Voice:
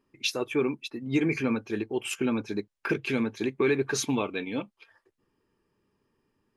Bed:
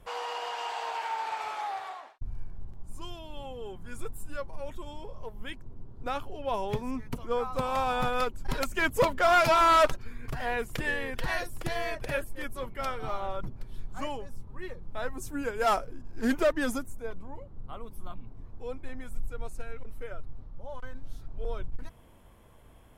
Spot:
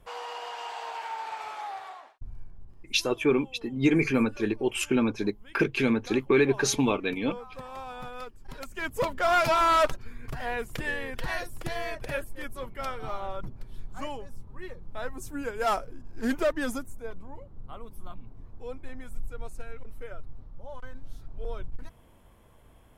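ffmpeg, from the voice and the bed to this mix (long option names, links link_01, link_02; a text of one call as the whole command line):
ffmpeg -i stem1.wav -i stem2.wav -filter_complex "[0:a]adelay=2700,volume=3dB[link_01];[1:a]volume=8dB,afade=type=out:start_time=2.06:duration=0.9:silence=0.354813,afade=type=in:start_time=8.55:duration=0.79:silence=0.298538[link_02];[link_01][link_02]amix=inputs=2:normalize=0" out.wav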